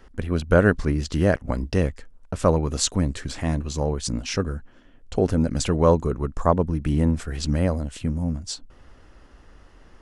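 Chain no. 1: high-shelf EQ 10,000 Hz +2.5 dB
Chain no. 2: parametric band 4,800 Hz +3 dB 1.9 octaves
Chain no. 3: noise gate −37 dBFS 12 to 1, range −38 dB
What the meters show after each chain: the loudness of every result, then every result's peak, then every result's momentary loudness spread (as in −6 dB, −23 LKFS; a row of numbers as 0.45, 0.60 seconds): −23.5, −23.5, −23.5 LKFS; −3.0, −1.5, −3.5 dBFS; 9, 9, 9 LU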